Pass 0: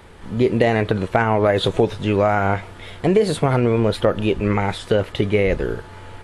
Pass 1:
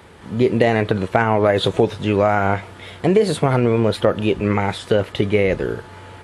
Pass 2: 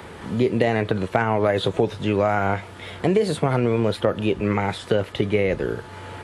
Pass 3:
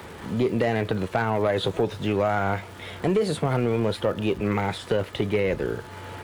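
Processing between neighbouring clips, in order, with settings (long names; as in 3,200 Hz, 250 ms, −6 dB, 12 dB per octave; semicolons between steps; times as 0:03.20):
high-pass filter 77 Hz; level +1 dB
multiband upward and downward compressor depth 40%; level −4 dB
surface crackle 450 per second −39 dBFS; soft clipping −12 dBFS, distortion −17 dB; level −1.5 dB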